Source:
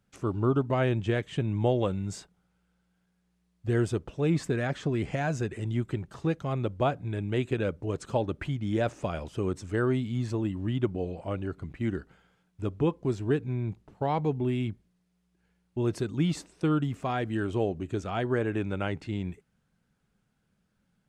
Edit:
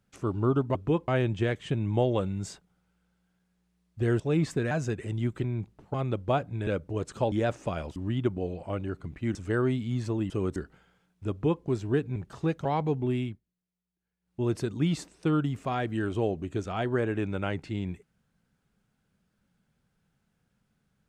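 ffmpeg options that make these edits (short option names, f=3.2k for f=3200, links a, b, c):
-filter_complex "[0:a]asplit=17[a][b][c][d][e][f][g][h][i][j][k][l][m][n][o][p][q];[a]atrim=end=0.752[r];[b]atrim=start=12.678:end=13.012[s];[c]atrim=start=0.748:end=3.872[t];[d]atrim=start=4.128:end=4.642[u];[e]atrim=start=5.238:end=5.972[v];[f]atrim=start=13.528:end=14.032[w];[g]atrim=start=6.458:end=7.192[x];[h]atrim=start=7.598:end=8.252[y];[i]atrim=start=8.688:end=9.332[z];[j]atrim=start=10.538:end=11.932[aa];[k]atrim=start=9.588:end=10.542[ab];[l]atrim=start=9.328:end=9.592[ac];[m]atrim=start=11.928:end=13.532[ad];[n]atrim=start=5.968:end=6.462[ae];[o]atrim=start=14.028:end=14.78,asetpts=PTS-STARTPTS,afade=t=out:st=0.542:d=0.21:silence=0.149624[af];[p]atrim=start=14.78:end=15.58,asetpts=PTS-STARTPTS,volume=-16.5dB[ag];[q]atrim=start=15.58,asetpts=PTS-STARTPTS,afade=t=in:d=0.21:silence=0.149624[ah];[r][s]acrossfade=d=0.004:c1=hsin:c2=hsin[ai];[ai][t]acrossfade=d=0.004:c1=hsin:c2=hsin[aj];[aj][u]acrossfade=d=0.004:c1=hsin:c2=hsin[ak];[ak][v]acrossfade=d=0.004:c1=hsin:c2=hsin[al];[al][w]acrossfade=d=0.004:c1=hsin:c2=hsin[am];[am][x]acrossfade=d=0.004:c1=hsin:c2=hsin[an];[an][y]acrossfade=d=0.004:c1=hsin:c2=hsin[ao];[ao][z]acrossfade=d=0.004:c1=hsin:c2=hsin[ap];[ap][aa]acrossfade=d=0.004:c1=hsin:c2=hsin[aq];[aq][ab]acrossfade=d=0.004:c1=hsin:c2=hsin[ar];[ar][ac]acrossfade=d=0.004:c1=hsin:c2=hsin[as];[as][ad]acrossfade=d=0.004:c1=hsin:c2=hsin[at];[at][ae]acrossfade=d=0.004:c1=hsin:c2=hsin[au];[af][ag][ah]concat=n=3:v=0:a=1[av];[au][av]acrossfade=d=0.004:c1=hsin:c2=hsin"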